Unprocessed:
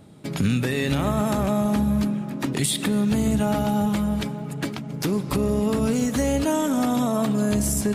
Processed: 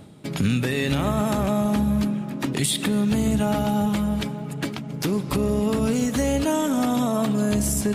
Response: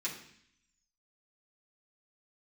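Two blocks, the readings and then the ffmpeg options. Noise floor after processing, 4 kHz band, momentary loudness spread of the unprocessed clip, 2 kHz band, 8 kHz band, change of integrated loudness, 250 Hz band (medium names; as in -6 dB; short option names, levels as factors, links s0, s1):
-33 dBFS, +1.5 dB, 6 LU, +0.5 dB, 0.0 dB, 0.0 dB, 0.0 dB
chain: -af "equalizer=f=3000:t=o:w=0.77:g=2,areverse,acompressor=mode=upward:threshold=0.0251:ratio=2.5,areverse"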